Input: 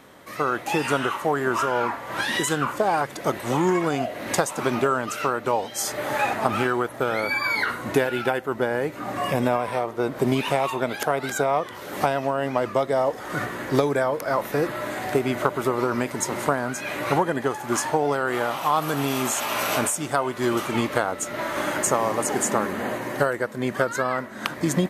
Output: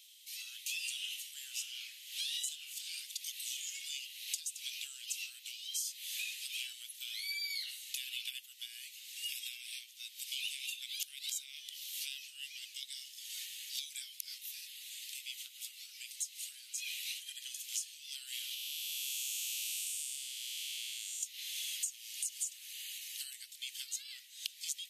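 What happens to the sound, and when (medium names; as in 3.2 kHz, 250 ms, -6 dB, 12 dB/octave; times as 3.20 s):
14.38–16.78 s: flange 1.4 Hz, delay 3 ms, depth 4.5 ms, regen +52%
18.54–21.23 s: spectral blur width 393 ms
whole clip: steep high-pass 2.8 kHz 48 dB/octave; compression 6:1, threshold -37 dBFS; trim +1 dB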